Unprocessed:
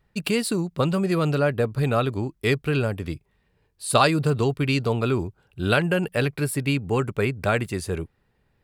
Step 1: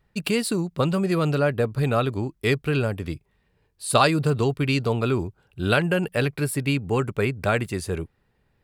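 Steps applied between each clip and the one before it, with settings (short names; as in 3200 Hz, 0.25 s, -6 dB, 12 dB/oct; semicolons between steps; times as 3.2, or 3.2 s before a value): nothing audible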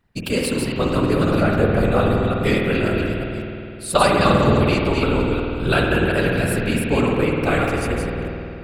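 reverse delay 0.18 s, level -3 dB; whisperiser; spring tank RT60 2.8 s, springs 50 ms, chirp 50 ms, DRR 0 dB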